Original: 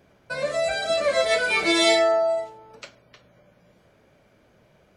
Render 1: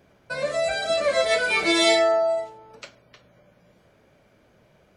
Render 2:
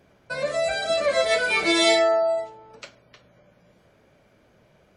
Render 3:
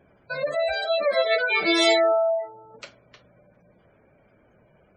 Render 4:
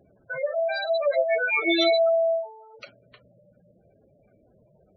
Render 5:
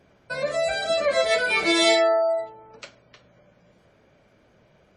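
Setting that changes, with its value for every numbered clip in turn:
spectral gate, under each frame's peak: -60 dB, -45 dB, -20 dB, -10 dB, -35 dB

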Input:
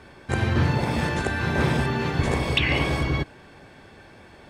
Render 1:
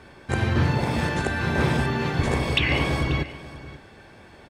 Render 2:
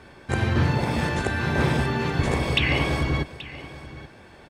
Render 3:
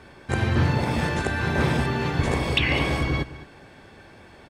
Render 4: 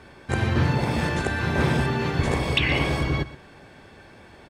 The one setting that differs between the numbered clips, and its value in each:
delay, time: 536 ms, 830 ms, 208 ms, 122 ms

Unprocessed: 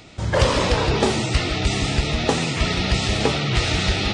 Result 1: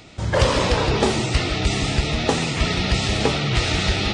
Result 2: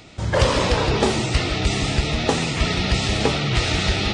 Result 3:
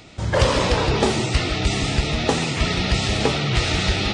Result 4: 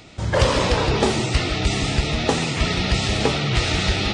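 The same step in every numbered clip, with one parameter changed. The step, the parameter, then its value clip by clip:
plate-style reverb, RT60: 2.5 s, 5.2 s, 0.5 s, 1.1 s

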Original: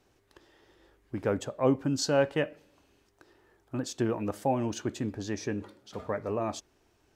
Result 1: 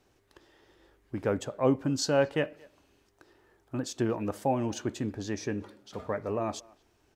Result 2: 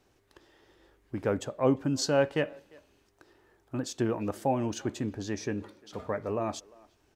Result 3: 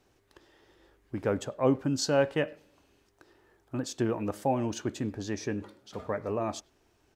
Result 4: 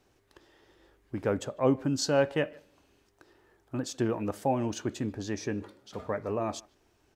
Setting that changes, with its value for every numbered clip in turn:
speakerphone echo, time: 230 ms, 350 ms, 100 ms, 150 ms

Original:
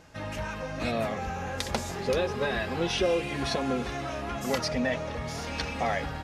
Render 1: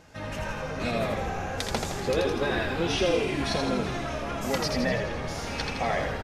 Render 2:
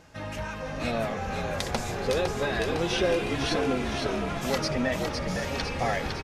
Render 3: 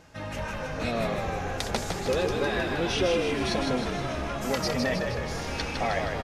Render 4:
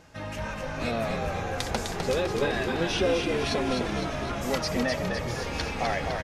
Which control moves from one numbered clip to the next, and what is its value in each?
frequency-shifting echo, time: 82 ms, 507 ms, 157 ms, 254 ms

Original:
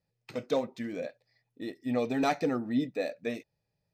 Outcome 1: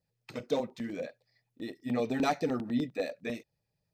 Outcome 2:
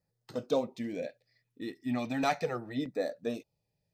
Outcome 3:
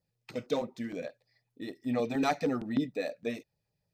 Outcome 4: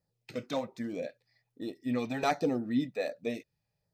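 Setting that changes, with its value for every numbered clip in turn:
LFO notch, rate: 10 Hz, 0.35 Hz, 6.5 Hz, 1.3 Hz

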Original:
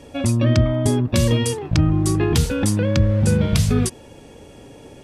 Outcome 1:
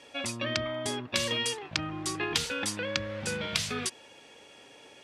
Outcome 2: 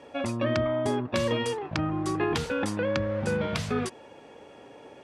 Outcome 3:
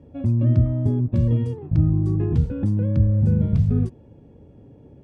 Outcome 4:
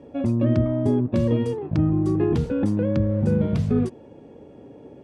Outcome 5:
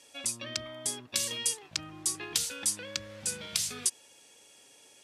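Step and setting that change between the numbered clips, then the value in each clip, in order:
band-pass filter, frequency: 2.8 kHz, 1.1 kHz, 110 Hz, 310 Hz, 8 kHz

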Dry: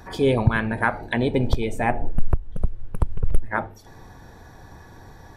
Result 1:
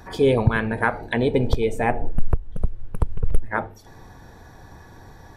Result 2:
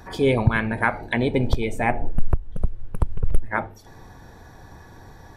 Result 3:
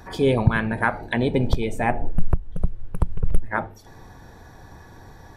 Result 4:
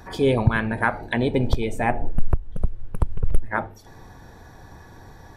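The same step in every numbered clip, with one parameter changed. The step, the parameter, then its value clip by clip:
dynamic bell, frequency: 460 Hz, 2.2 kHz, 170 Hz, 8 kHz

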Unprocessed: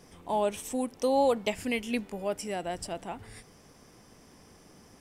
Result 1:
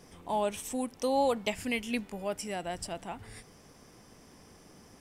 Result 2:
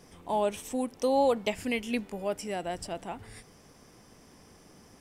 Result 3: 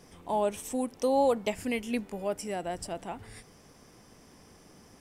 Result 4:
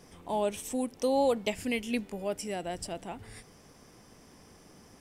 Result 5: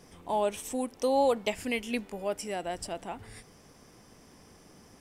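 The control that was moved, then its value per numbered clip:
dynamic bell, frequency: 420 Hz, 9.6 kHz, 3.3 kHz, 1.1 kHz, 140 Hz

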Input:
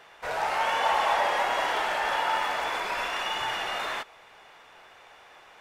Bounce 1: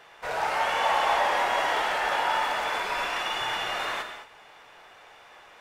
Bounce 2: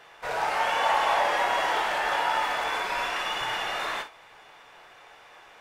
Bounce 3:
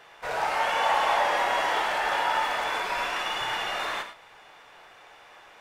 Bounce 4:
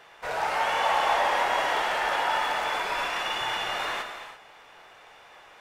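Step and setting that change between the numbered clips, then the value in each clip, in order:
gated-style reverb, gate: 250 ms, 80 ms, 130 ms, 370 ms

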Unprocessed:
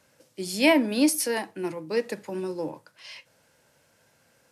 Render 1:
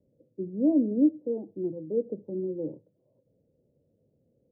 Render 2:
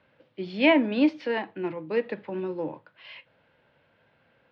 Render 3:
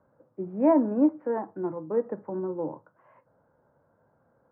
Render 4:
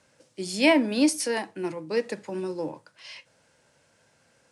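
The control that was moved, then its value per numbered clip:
steep low-pass, frequency: 500 Hz, 3.5 kHz, 1.3 kHz, 9.9 kHz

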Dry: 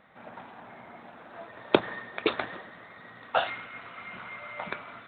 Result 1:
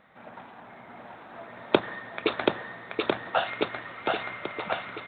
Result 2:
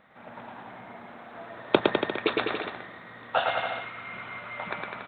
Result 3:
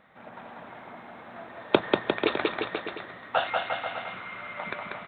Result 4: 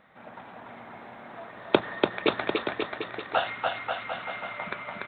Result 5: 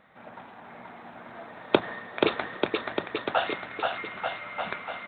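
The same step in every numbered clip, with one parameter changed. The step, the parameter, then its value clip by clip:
bouncing-ball echo, first gap: 730 ms, 110 ms, 190 ms, 290 ms, 480 ms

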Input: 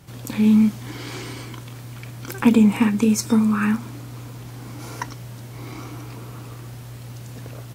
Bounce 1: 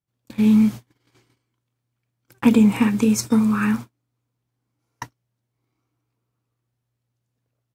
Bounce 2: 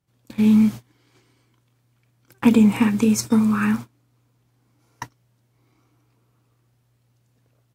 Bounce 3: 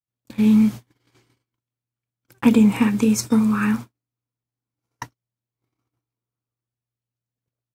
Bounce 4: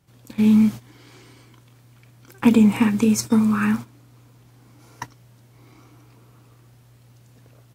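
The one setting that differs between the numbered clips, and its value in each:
gate, range: -41 dB, -28 dB, -53 dB, -15 dB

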